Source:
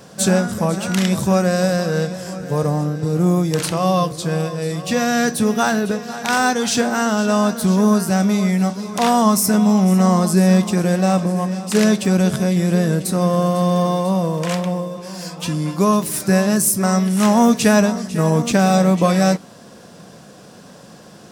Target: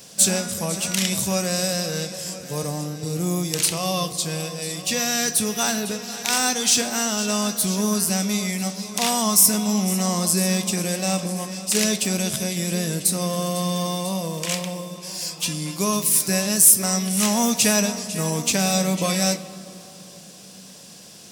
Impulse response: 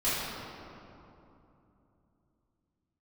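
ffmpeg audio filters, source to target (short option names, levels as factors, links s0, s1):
-filter_complex "[0:a]aexciter=amount=3:drive=7.5:freq=2100,asplit=2[s0][s1];[1:a]atrim=start_sample=2205[s2];[s1][s2]afir=irnorm=-1:irlink=0,volume=0.0668[s3];[s0][s3]amix=inputs=2:normalize=0,volume=0.355"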